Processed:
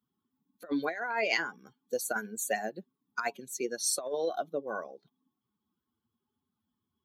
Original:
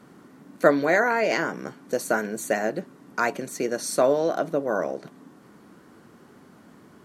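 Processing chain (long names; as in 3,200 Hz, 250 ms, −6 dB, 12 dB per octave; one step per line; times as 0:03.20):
spectral dynamics exaggerated over time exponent 2
high-pass filter 680 Hz 6 dB per octave
compressor whose output falls as the input rises −31 dBFS, ratio −0.5
level +1 dB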